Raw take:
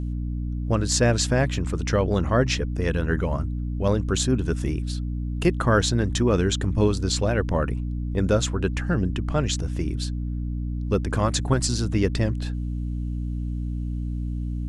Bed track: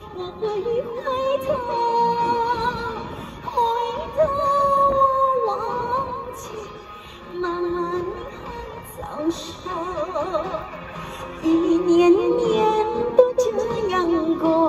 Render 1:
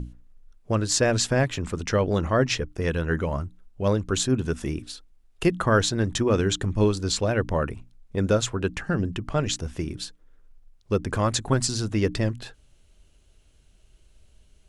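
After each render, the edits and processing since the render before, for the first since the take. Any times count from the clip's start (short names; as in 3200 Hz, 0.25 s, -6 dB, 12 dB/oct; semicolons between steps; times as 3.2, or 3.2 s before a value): notches 60/120/180/240/300 Hz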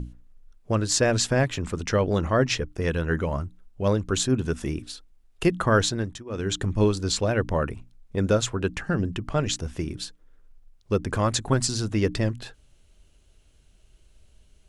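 5.87–6.61 dip -21.5 dB, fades 0.36 s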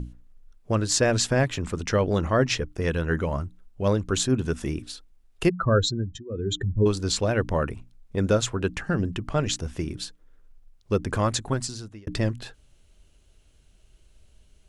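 5.49–6.86 spectral contrast raised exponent 2.1; 11.22–12.07 fade out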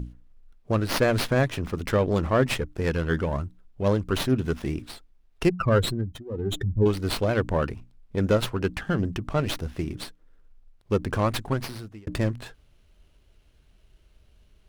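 running maximum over 5 samples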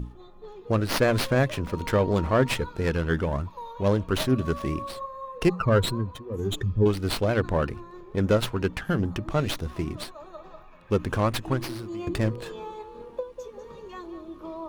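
add bed track -19.5 dB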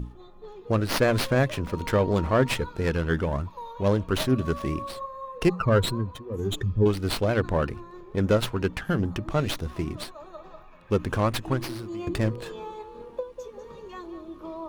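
nothing audible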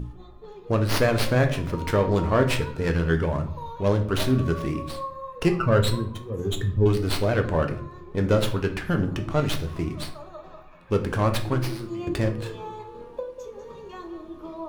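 shoebox room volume 78 m³, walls mixed, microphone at 0.38 m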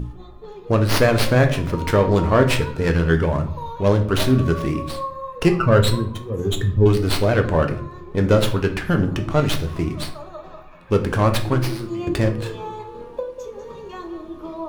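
gain +5 dB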